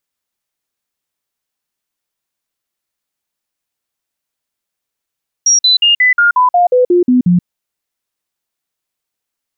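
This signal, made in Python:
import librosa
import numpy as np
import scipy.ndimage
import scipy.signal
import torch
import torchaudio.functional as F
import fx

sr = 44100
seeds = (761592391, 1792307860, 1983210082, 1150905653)

y = fx.stepped_sweep(sr, from_hz=5660.0, direction='down', per_octave=2, tones=11, dwell_s=0.13, gap_s=0.05, level_db=-6.0)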